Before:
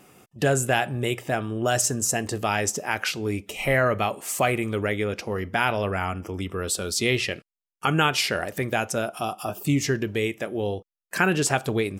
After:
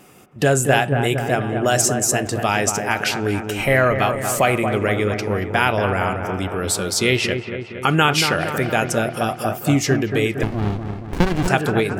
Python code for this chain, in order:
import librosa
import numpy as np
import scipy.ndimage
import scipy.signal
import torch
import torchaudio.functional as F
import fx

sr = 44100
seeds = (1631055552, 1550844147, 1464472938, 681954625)

p1 = x + fx.echo_wet_lowpass(x, sr, ms=231, feedback_pct=62, hz=1800.0, wet_db=-6.5, dry=0)
p2 = fx.running_max(p1, sr, window=65, at=(10.43, 11.48))
y = p2 * 10.0 ** (5.0 / 20.0)